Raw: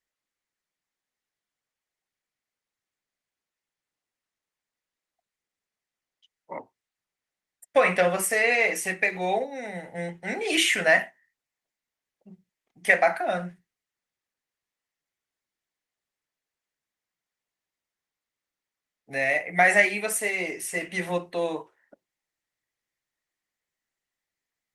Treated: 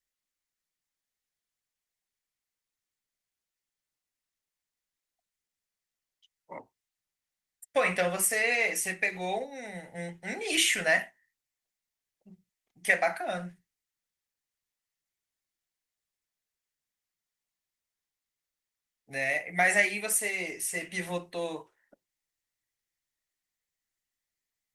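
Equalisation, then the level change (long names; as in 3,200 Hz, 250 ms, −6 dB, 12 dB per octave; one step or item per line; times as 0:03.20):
low-shelf EQ 110 Hz +11 dB
high-shelf EQ 3,000 Hz +9.5 dB
−7.5 dB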